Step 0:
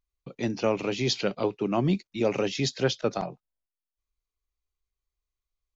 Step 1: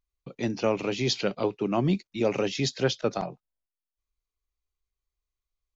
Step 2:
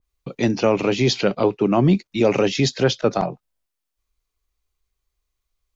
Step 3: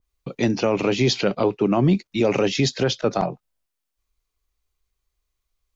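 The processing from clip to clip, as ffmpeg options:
ffmpeg -i in.wav -af anull out.wav
ffmpeg -i in.wav -filter_complex "[0:a]asplit=2[link_01][link_02];[link_02]alimiter=limit=-18.5dB:level=0:latency=1:release=35,volume=2.5dB[link_03];[link_01][link_03]amix=inputs=2:normalize=0,adynamicequalizer=threshold=0.0112:dfrequency=2200:dqfactor=0.7:tfrequency=2200:tqfactor=0.7:attack=5:release=100:ratio=0.375:range=2.5:mode=cutabove:tftype=highshelf,volume=2.5dB" out.wav
ffmpeg -i in.wav -af "alimiter=limit=-9.5dB:level=0:latency=1:release=67" out.wav

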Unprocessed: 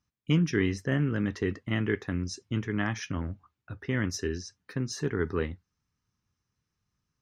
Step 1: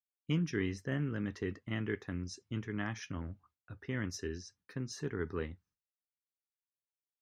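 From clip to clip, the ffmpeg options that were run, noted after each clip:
ffmpeg -i in.wav -af "agate=range=-33dB:threshold=-56dB:ratio=3:detection=peak,volume=-8dB" out.wav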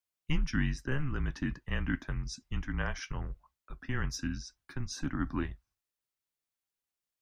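ffmpeg -i in.wav -af "afreqshift=-140,volume=4.5dB" out.wav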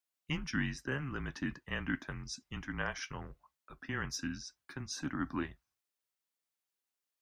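ffmpeg -i in.wav -af "highpass=frequency=230:poles=1" out.wav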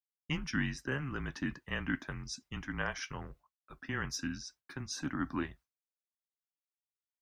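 ffmpeg -i in.wav -af "agate=range=-33dB:threshold=-54dB:ratio=3:detection=peak,volume=1dB" out.wav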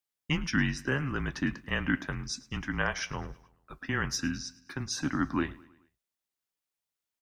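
ffmpeg -i in.wav -af "aecho=1:1:107|214|321|428:0.0891|0.0455|0.0232|0.0118,volume=6dB" out.wav

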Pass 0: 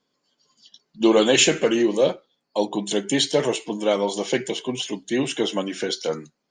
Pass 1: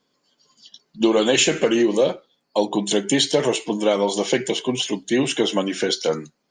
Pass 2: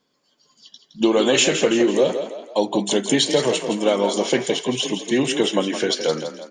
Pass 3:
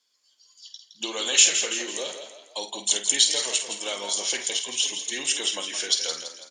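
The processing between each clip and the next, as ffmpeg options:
ffmpeg -i in.wav -af "acompressor=threshold=-18dB:ratio=6,volume=4.5dB" out.wav
ffmpeg -i in.wav -filter_complex "[0:a]asplit=6[link_01][link_02][link_03][link_04][link_05][link_06];[link_02]adelay=166,afreqshift=32,volume=-9dB[link_07];[link_03]adelay=332,afreqshift=64,volume=-16.5dB[link_08];[link_04]adelay=498,afreqshift=96,volume=-24.1dB[link_09];[link_05]adelay=664,afreqshift=128,volume=-31.6dB[link_10];[link_06]adelay=830,afreqshift=160,volume=-39.1dB[link_11];[link_01][link_07][link_08][link_09][link_10][link_11]amix=inputs=6:normalize=0" out.wav
ffmpeg -i in.wav -filter_complex "[0:a]bandpass=frequency=8000:width_type=q:width=0.78:csg=0,asplit=2[link_01][link_02];[link_02]adelay=50,volume=-10dB[link_03];[link_01][link_03]amix=inputs=2:normalize=0,volume=5.5dB" out.wav

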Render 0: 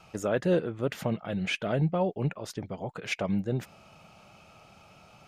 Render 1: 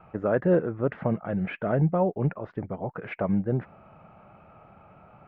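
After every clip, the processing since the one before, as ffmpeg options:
ffmpeg -i in.wav -af "lowpass=frequency=1800:width=0.5412,lowpass=frequency=1800:width=1.3066,volume=3.5dB" out.wav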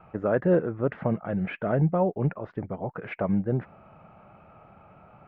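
ffmpeg -i in.wav -af anull out.wav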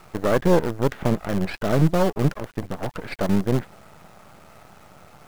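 ffmpeg -i in.wav -af "aeval=exprs='if(lt(val(0),0),0.251*val(0),val(0))':channel_layout=same,acrusher=bits=7:dc=4:mix=0:aa=0.000001,volume=7.5dB" out.wav

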